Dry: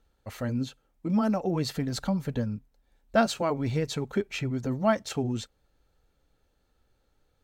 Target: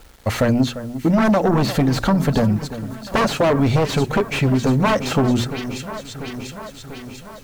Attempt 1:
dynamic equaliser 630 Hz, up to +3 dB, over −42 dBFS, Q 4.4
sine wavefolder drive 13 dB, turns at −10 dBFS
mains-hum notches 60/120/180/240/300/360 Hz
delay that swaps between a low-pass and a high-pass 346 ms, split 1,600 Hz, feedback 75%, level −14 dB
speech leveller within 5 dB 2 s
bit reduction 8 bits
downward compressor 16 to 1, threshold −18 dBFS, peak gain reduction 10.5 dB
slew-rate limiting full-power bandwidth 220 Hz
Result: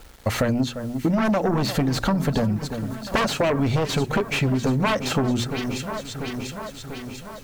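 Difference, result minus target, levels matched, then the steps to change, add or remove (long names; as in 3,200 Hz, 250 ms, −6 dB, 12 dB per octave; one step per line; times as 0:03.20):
downward compressor: peak gain reduction +5.5 dB
change: downward compressor 16 to 1, threshold −12 dBFS, peak gain reduction 5 dB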